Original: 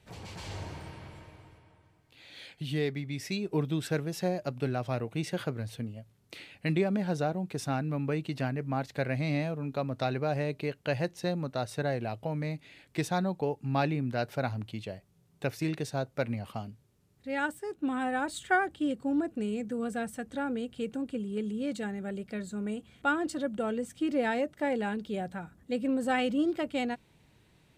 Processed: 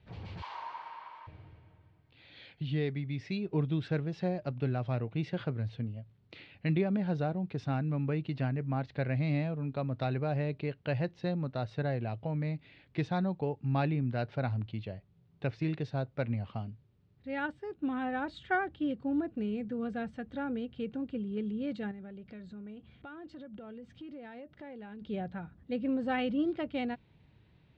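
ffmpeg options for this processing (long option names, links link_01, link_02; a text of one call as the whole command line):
ffmpeg -i in.wav -filter_complex "[0:a]asettb=1/sr,asplit=3[link_01][link_02][link_03];[link_01]atrim=end=0.424[link_04];[link_02]atrim=start=0.42:end=1.27,asetpts=PTS-STARTPTS,afade=type=in:duration=0.004:curve=qsin,afade=type=out:start_time=0.846:duration=0.004:curve=qsin,highpass=frequency=1000:width_type=q:width=7.8[link_05];[link_03]atrim=start=1.266[link_06];[link_04][link_05]acrossfade=duration=0.004:curve1=hsin:curve2=qsin[link_07];[link_07][link_06]acrossfade=duration=0.004:curve1=qsin:curve2=hsin,asettb=1/sr,asplit=3[link_08][link_09][link_10];[link_08]atrim=end=21.914[link_11];[link_09]atrim=start=21.91:end=25.02,asetpts=PTS-STARTPTS,afade=type=in:duration=0.004:curve=qsin,afade=type=out:start_time=3.106:duration=0.004:curve=qsin,acompressor=threshold=-43dB:ratio=4:attack=3.2:release=140:knee=1:detection=peak[link_12];[link_10]atrim=start=25.016[link_13];[link_11][link_12]acrossfade=duration=0.004:curve1=hsin:curve2=qsin[link_14];[link_14][link_13]acrossfade=duration=0.004:curve1=qsin:curve2=hsin,lowpass=frequency=4100:width=0.5412,lowpass=frequency=4100:width=1.3066,equalizer=frequency=89:width_type=o:width=2.3:gain=8,volume=-4.5dB" out.wav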